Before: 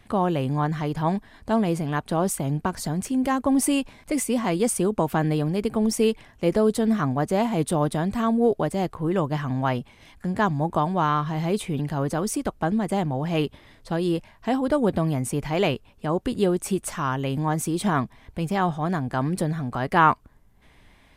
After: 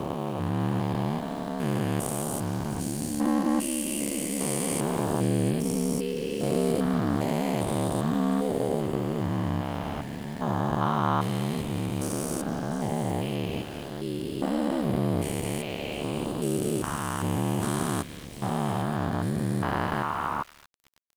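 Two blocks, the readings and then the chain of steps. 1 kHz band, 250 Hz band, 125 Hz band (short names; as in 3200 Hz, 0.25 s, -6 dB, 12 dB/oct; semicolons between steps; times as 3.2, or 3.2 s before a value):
-5.5 dB, -3.5 dB, -2.5 dB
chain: stepped spectrum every 0.4 s; high shelf 7100 Hz +10 dB; AGC gain up to 4 dB; ring modulator 36 Hz; delay with a stepping band-pass 0.234 s, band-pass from 2700 Hz, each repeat 0.7 oct, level -5 dB; sample gate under -43.5 dBFS; gain -1 dB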